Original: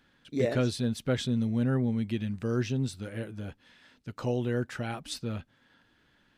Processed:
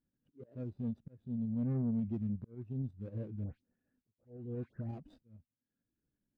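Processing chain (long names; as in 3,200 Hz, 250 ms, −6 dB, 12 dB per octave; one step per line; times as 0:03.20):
running median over 41 samples
volume swells 771 ms
shaped tremolo saw up 11 Hz, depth 40%
in parallel at +1 dB: brickwall limiter −33.5 dBFS, peak gain reduction 11 dB
0:03.44–0:04.89: on the sum: all-pass dispersion highs, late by 129 ms, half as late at 2,200 Hz
soft clipping −27.5 dBFS, distortion −13 dB
every bin expanded away from the loudest bin 1.5 to 1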